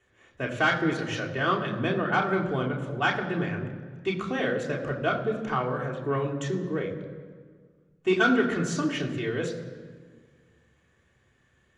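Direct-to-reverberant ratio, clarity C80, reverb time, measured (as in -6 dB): -2.0 dB, 10.0 dB, 1.7 s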